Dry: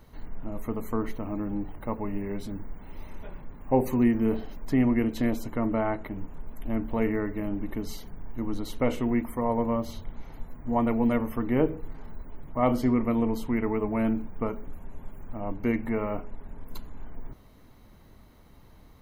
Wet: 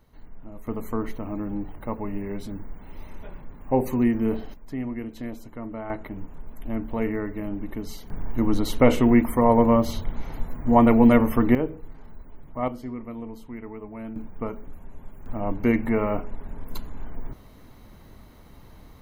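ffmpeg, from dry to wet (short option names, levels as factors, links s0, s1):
-af "asetnsamples=n=441:p=0,asendcmd='0.67 volume volume 1dB;4.54 volume volume -8dB;5.9 volume volume 0dB;8.1 volume volume 9dB;11.55 volume volume -3dB;12.68 volume volume -10.5dB;14.16 volume volume -1dB;15.26 volume volume 5.5dB',volume=0.473"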